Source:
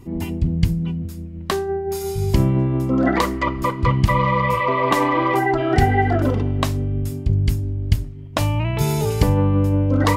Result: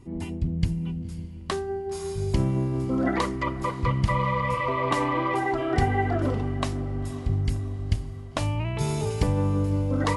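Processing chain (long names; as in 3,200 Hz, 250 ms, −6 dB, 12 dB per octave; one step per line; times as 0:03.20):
feedback delay with all-pass diffusion 537 ms, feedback 54%, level −15.5 dB
level −7 dB
AC-3 64 kbit/s 48,000 Hz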